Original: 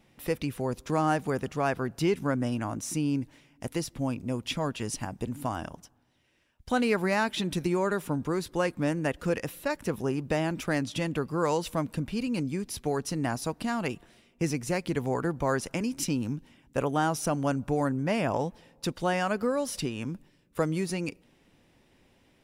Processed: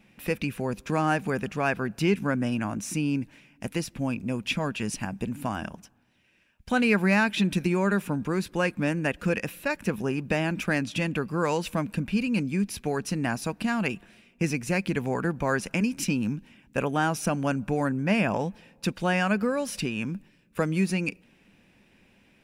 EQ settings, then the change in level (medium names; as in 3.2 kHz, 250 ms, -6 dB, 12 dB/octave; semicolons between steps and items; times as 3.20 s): graphic EQ with 31 bands 200 Hz +10 dB, 1.6 kHz +6 dB, 2.5 kHz +10 dB; 0.0 dB